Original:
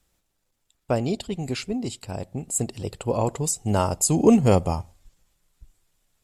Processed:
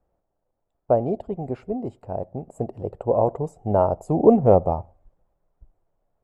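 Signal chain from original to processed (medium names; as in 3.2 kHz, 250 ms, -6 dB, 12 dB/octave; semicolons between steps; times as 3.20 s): FFT filter 260 Hz 0 dB, 660 Hz +10 dB, 4.2 kHz -29 dB; trim -2 dB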